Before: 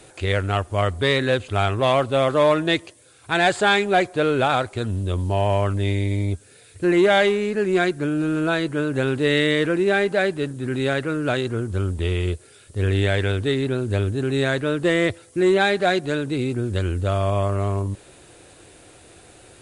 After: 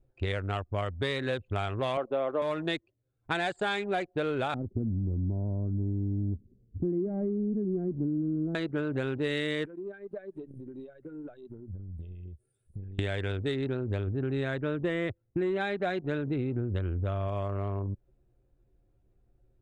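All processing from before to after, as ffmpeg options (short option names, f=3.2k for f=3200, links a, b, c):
-filter_complex "[0:a]asettb=1/sr,asplit=3[a][b][c];[a]atrim=end=1.974[d];[b]atrim=start=1.97:end=2.42,asetpts=PTS-STARTPTS,afade=t=in:d=0.004:c=qsin,afade=t=out:st=0.446:d=0.004:c=qsin,highpass=350,lowpass=3.3k,tiltshelf=f=1.4k:g=7[e];[c]atrim=start=2.416[f];[d][e]acrossfade=d=0.004:c1=hsin:c2=qsin[g];[g][f]acrossfade=d=0.004:c1=qsin:c2=hsin,asettb=1/sr,asplit=3[h][i][j];[h]atrim=end=4.544[k];[i]atrim=start=4.54:end=8.55,asetpts=PTS-STARTPTS,afade=t=in:d=0.004:c=qsin,afade=t=out:st=4.006:d=0.004:c=qsin,aeval=exprs='val(0)+0.5*0.0237*sgn(val(0))':c=same,lowpass=f=250:t=q:w=2.1[l];[j]atrim=start=8.546[m];[k][l]acrossfade=d=0.004:c1=hsin:c2=qsin[n];[n][m]acrossfade=d=0.004:c1=qsin:c2=hsin,asettb=1/sr,asplit=3[o][p][q];[o]atrim=end=9.654[r];[p]atrim=start=9.65:end=12.99,asetpts=PTS-STARTPTS,afade=t=in:d=0.004:c=qsin,afade=t=out:st=3.336:d=0.004:c=qsin,aemphasis=mode=production:type=50fm,acompressor=threshold=-31dB:ratio=10:attack=3.2:release=140:knee=1:detection=peak[s];[q]atrim=start=12.986[t];[r][s]acrossfade=d=0.004:c1=hsin:c2=qsin[u];[u][t]acrossfade=d=0.004:c1=qsin:c2=hsin,asettb=1/sr,asplit=3[v][w][x];[v]atrim=end=14.074[y];[w]atrim=start=14.07:end=17.28,asetpts=PTS-STARTPTS,afade=t=in:d=0.004:c=qsin,afade=t=out:st=3.206:d=0.004:c=qsin,bass=f=250:g=3,treble=f=4k:g=-8,bandreject=f=4.5k:w=9.7[z];[x]atrim=start=17.276[aa];[y][z]acrossfade=d=0.004:c1=hsin:c2=qsin[ab];[ab][aa]acrossfade=d=0.004:c1=qsin:c2=hsin,anlmdn=158,acompressor=threshold=-28dB:ratio=6"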